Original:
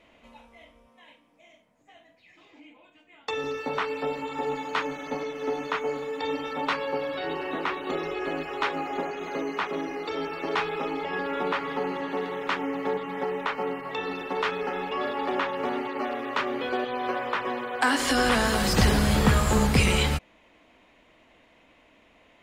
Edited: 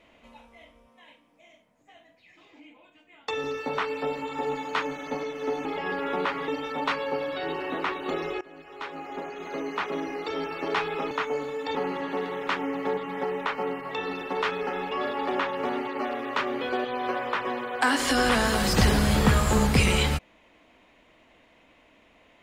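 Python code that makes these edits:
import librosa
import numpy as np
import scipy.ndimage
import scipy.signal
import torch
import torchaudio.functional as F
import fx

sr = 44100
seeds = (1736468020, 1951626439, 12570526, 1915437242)

y = fx.edit(x, sr, fx.swap(start_s=5.65, length_s=0.64, other_s=10.92, other_length_s=0.83),
    fx.fade_in_from(start_s=8.22, length_s=1.52, floor_db=-22.5), tone=tone)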